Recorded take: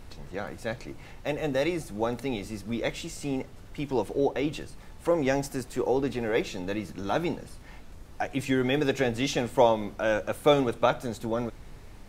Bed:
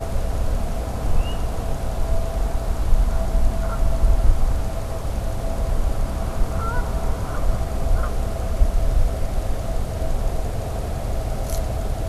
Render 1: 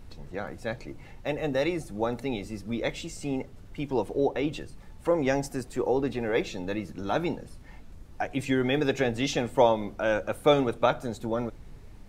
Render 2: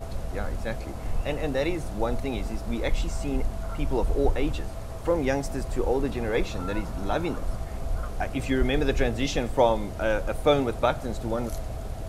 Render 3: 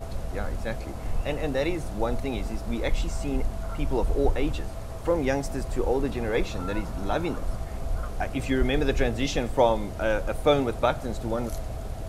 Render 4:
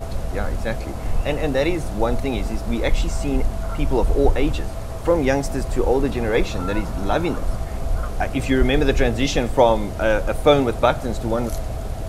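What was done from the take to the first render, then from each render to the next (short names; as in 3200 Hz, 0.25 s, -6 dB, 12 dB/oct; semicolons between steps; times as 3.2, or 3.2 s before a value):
denoiser 6 dB, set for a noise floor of -47 dBFS
add bed -9.5 dB
nothing audible
gain +6.5 dB; limiter -3 dBFS, peak gain reduction 1.5 dB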